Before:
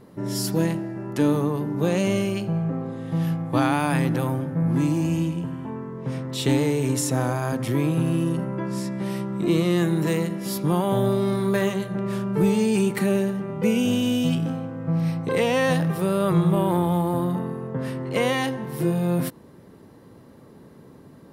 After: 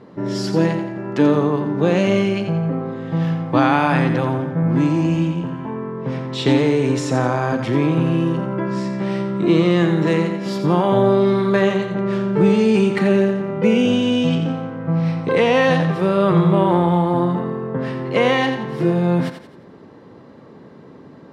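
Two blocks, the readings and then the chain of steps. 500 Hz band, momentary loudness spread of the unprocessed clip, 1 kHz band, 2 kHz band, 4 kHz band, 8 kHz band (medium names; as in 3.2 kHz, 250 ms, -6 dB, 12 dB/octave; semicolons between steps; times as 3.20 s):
+7.0 dB, 8 LU, +7.0 dB, +6.5 dB, +4.5 dB, no reading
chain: high-pass 190 Hz 6 dB/octave; distance through air 150 m; thinning echo 87 ms, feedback 40%, level -8 dB; trim +7.5 dB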